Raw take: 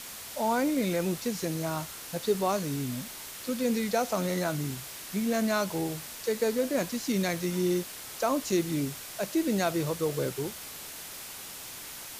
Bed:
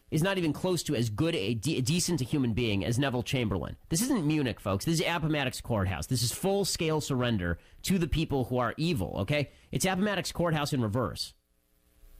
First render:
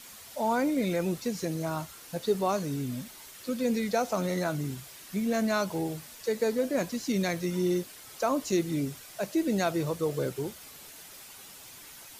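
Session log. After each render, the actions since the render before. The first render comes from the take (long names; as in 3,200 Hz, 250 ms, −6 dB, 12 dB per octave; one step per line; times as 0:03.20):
broadband denoise 8 dB, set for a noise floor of −43 dBFS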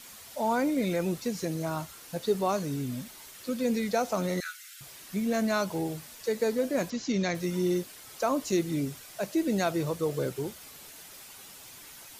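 0:04.40–0:04.81: Butterworth high-pass 1,300 Hz 96 dB per octave
0:06.90–0:07.35: Butterworth low-pass 7,100 Hz 72 dB per octave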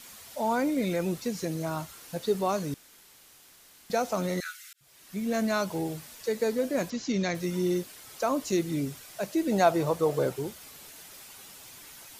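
0:02.74–0:03.90: fill with room tone
0:04.73–0:05.36: fade in
0:09.51–0:10.36: parametric band 790 Hz +9.5 dB 1.3 octaves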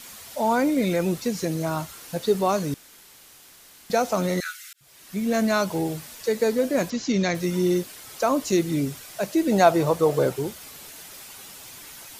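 level +5.5 dB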